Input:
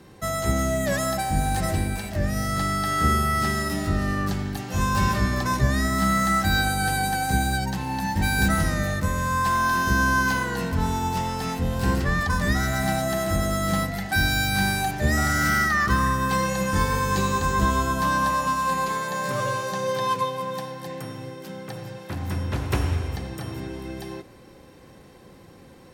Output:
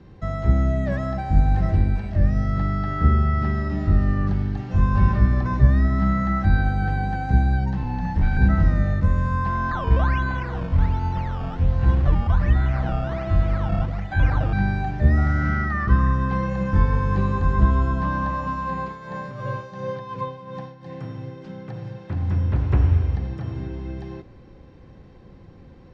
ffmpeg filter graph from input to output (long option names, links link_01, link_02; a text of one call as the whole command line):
ffmpeg -i in.wav -filter_complex "[0:a]asettb=1/sr,asplit=3[link_01][link_02][link_03];[link_01]atrim=end=7.834[link_04];[link_02]atrim=start=7.83:end=8.37,asetpts=PTS-STARTPTS,afade=type=in:duration=0.004:curve=qsin,afade=type=out:start_time=0.536:duration=0.004:curve=qsin,afreqshift=-16,asoftclip=type=hard:threshold=-21dB[link_05];[link_03]atrim=start=8.366[link_06];[link_04][link_05]acrossfade=duration=0.004:curve1=hsin:curve2=qsin[link_07];[link_07][link_06]acrossfade=duration=0.004:curve1=qsin:curve2=hsin,asettb=1/sr,asplit=3[link_08][link_09][link_10];[link_08]atrim=end=9.714[link_11];[link_09]atrim=start=9.71:end=14.53,asetpts=PTS-STARTPTS,afade=type=in:duration=0.004:curve=qsin,afade=type=out:start_time=4.816:duration=0.004:curve=qsin,acrusher=samples=15:mix=1:aa=0.000001:lfo=1:lforange=15:lforate=1.3,equalizer=frequency=220:width_type=o:width=0.61:gain=-8,bandreject=frequency=420:width=6.1[link_12];[link_10]atrim=start=14.526[link_13];[link_11][link_12]acrossfade=duration=0.004:curve1=hsin:curve2=qsin[link_14];[link_14][link_13]acrossfade=duration=0.004:curve1=qsin:curve2=hsin,asettb=1/sr,asplit=3[link_15][link_16][link_17];[link_15]atrim=end=18.814[link_18];[link_16]atrim=start=18.81:end=20.92,asetpts=PTS-STARTPTS,afade=type=in:duration=0.004:curve=qsin,afade=type=out:start_time=2.106:duration=0.004:curve=qsin,tremolo=f=2.8:d=0.67,lowpass=12000[link_19];[link_17]atrim=start=20.916[link_20];[link_18][link_19]acrossfade=duration=0.004:curve1=hsin:curve2=qsin[link_21];[link_21][link_20]acrossfade=duration=0.004:curve1=qsin:curve2=hsin,lowpass=frequency=6200:width=0.5412,lowpass=frequency=6200:width=1.3066,aemphasis=mode=reproduction:type=bsi,acrossover=split=2500[link_22][link_23];[link_23]acompressor=threshold=-50dB:ratio=4:attack=1:release=60[link_24];[link_22][link_24]amix=inputs=2:normalize=0,volume=-4dB" out.wav